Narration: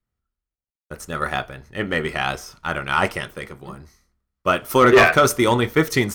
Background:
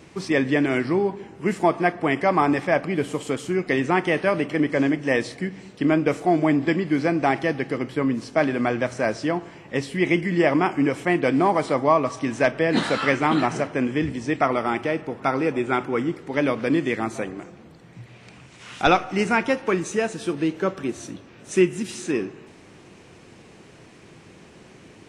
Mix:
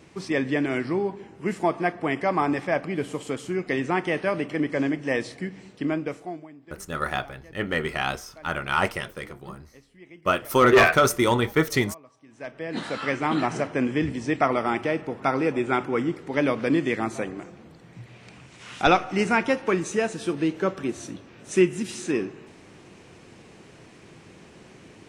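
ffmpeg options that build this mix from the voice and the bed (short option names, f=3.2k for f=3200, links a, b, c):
-filter_complex "[0:a]adelay=5800,volume=-3.5dB[a];[1:a]volume=22.5dB,afade=t=out:st=5.68:d=0.8:silence=0.0668344,afade=t=in:st=12.28:d=1.49:silence=0.0473151[b];[a][b]amix=inputs=2:normalize=0"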